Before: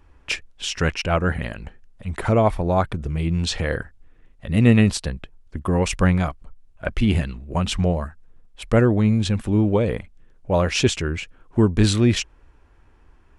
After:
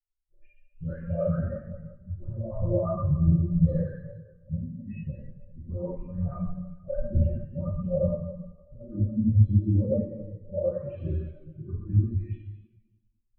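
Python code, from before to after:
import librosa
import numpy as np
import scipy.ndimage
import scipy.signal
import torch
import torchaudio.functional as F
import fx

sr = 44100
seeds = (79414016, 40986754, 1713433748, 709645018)

p1 = fx.spec_delay(x, sr, highs='late', ms=405)
p2 = fx.env_lowpass(p1, sr, base_hz=570.0, full_db=-16.5)
p3 = fx.high_shelf(p2, sr, hz=2300.0, db=5.0)
p4 = fx.over_compress(p3, sr, threshold_db=-21.0, ratio=-0.5)
p5 = 10.0 ** (-18.5 / 20.0) * np.tanh(p4 / 10.0 ** (-18.5 / 20.0))
p6 = fx.spacing_loss(p5, sr, db_at_10k=34)
p7 = fx.small_body(p6, sr, hz=(580.0, 1200.0, 4000.0), ring_ms=70, db=10)
p8 = p7 + fx.echo_single(p7, sr, ms=89, db=-10.0, dry=0)
p9 = fx.rev_plate(p8, sr, seeds[0], rt60_s=3.0, hf_ratio=0.9, predelay_ms=0, drr_db=-6.0)
p10 = fx.spectral_expand(p9, sr, expansion=2.5)
y = p10 * librosa.db_to_amplitude(-2.0)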